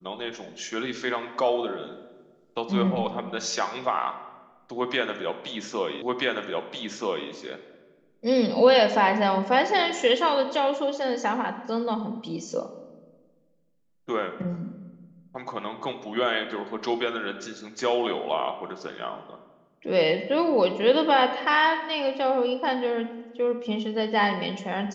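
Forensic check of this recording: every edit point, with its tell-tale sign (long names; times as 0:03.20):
0:06.02: the same again, the last 1.28 s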